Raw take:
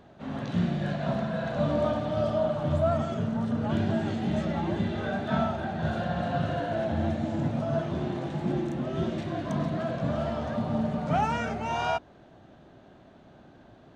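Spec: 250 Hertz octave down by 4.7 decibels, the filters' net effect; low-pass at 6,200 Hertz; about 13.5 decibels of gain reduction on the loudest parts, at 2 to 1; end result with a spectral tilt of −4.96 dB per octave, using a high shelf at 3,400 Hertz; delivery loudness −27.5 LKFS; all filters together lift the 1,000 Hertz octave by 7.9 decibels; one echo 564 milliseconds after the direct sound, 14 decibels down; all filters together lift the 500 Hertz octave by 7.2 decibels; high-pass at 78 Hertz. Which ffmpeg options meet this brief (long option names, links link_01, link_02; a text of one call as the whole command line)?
ffmpeg -i in.wav -af "highpass=78,lowpass=6200,equalizer=frequency=250:width_type=o:gain=-9,equalizer=frequency=500:width_type=o:gain=8,equalizer=frequency=1000:width_type=o:gain=7.5,highshelf=frequency=3400:gain=7.5,acompressor=threshold=-41dB:ratio=2,aecho=1:1:564:0.2,volume=8dB" out.wav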